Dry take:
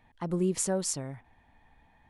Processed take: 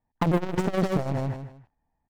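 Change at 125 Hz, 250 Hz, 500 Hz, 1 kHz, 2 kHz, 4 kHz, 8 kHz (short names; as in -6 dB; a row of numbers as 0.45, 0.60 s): +9.0, +6.0, +4.5, +11.5, +11.0, 0.0, -16.5 dB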